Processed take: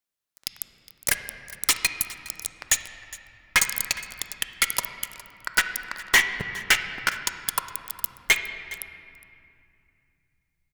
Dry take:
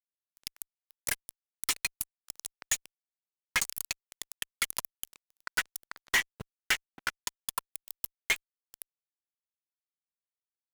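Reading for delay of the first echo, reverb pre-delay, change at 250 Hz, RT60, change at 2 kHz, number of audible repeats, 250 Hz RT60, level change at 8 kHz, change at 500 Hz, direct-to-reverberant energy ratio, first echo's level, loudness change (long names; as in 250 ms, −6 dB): 412 ms, 5 ms, +9.5 dB, 2.4 s, +9.5 dB, 1, 3.7 s, +8.5 dB, +9.5 dB, 7.5 dB, −19.0 dB, +8.5 dB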